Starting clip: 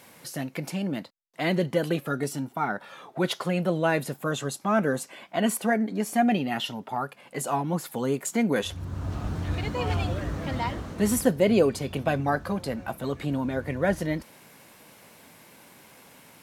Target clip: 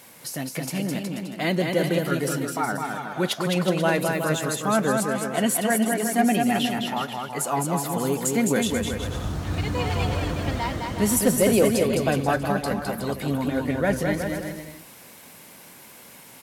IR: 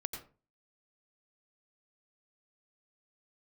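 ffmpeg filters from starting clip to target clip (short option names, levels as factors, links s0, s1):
-af "highshelf=f=5100:g=6.5,aecho=1:1:210|367.5|485.6|574.2|640.7:0.631|0.398|0.251|0.158|0.1,asoftclip=type=hard:threshold=0.282,volume=1.12"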